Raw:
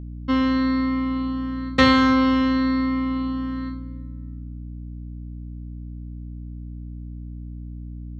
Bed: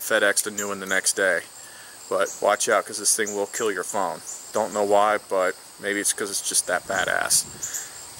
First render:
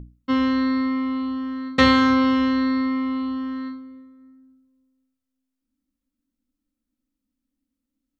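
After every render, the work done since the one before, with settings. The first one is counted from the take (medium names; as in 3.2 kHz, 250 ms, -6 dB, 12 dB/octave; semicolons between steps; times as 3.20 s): hum notches 60/120/180/240/300 Hz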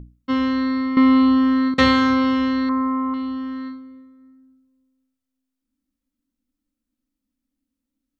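0.97–1.74 s: gain +11.5 dB; 2.69–3.14 s: resonant low-pass 1.1 kHz, resonance Q 2.8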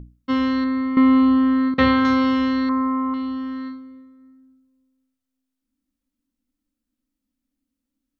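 0.64–2.05 s: distance through air 260 m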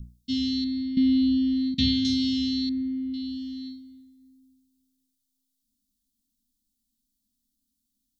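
elliptic band-stop 220–3600 Hz, stop band 70 dB; treble shelf 2.5 kHz +10.5 dB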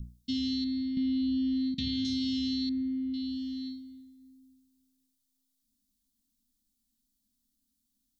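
peak limiter -20 dBFS, peak gain reduction 8 dB; compression 1.5:1, threshold -35 dBFS, peak gain reduction 4.5 dB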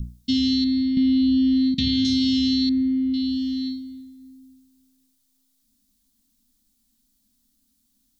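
trim +10.5 dB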